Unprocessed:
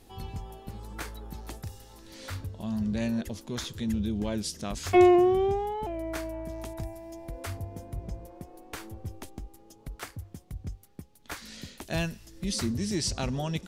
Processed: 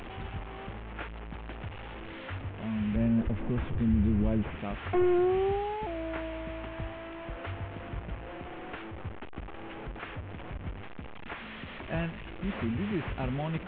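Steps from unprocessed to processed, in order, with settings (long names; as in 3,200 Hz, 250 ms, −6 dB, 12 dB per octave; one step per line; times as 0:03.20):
linear delta modulator 16 kbit/s, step −34 dBFS
0:02.96–0:04.56: spectral tilt −3 dB per octave
in parallel at +1 dB: brickwall limiter −20.5 dBFS, peak gain reduction 10 dB
on the sum: level −8 dB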